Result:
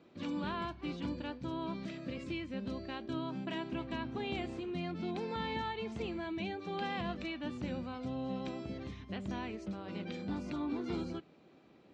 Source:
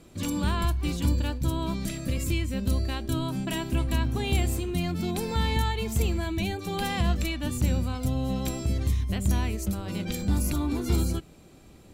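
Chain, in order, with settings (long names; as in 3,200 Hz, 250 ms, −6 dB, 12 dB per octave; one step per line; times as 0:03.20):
band-pass filter 220–7,800 Hz
high-frequency loss of the air 230 metres
level −5.5 dB
Ogg Vorbis 48 kbit/s 22,050 Hz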